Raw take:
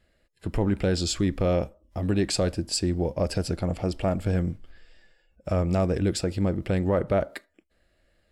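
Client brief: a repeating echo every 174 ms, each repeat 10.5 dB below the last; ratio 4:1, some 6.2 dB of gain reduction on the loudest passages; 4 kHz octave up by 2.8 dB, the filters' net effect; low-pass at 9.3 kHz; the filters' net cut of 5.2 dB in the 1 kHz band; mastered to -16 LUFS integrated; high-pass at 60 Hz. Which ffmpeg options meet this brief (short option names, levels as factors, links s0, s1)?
-af "highpass=60,lowpass=9300,equalizer=f=1000:t=o:g=-8.5,equalizer=f=4000:t=o:g=4,acompressor=threshold=0.0398:ratio=4,aecho=1:1:174|348|522:0.299|0.0896|0.0269,volume=6.68"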